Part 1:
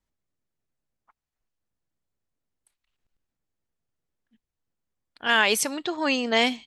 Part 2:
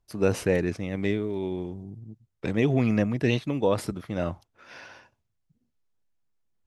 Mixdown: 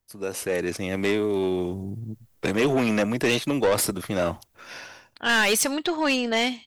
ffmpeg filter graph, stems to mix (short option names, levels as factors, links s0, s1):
-filter_complex "[0:a]volume=0.944[s0];[1:a]aemphasis=mode=production:type=50fm,acrossover=split=260|3000[s1][s2][s3];[s1]acompressor=threshold=0.0112:ratio=6[s4];[s4][s2][s3]amix=inputs=3:normalize=0,volume=0.473[s5];[s0][s5]amix=inputs=2:normalize=0,dynaudnorm=f=120:g=11:m=6.31,asoftclip=type=tanh:threshold=0.158"